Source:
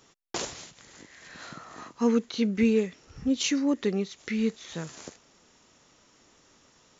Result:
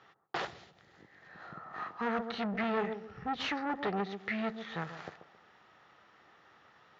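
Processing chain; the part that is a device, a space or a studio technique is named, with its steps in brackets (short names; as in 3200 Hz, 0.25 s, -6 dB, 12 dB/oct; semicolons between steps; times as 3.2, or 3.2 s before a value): analogue delay pedal into a guitar amplifier (analogue delay 0.135 s, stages 1024, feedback 30%, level -11 dB; tube stage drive 29 dB, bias 0.65; speaker cabinet 91–3900 Hz, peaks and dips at 260 Hz -9 dB, 780 Hz +9 dB, 1300 Hz +9 dB, 1800 Hz +9 dB); 0.46–1.73 bell 1100 Hz -> 3500 Hz -12.5 dB 3 oct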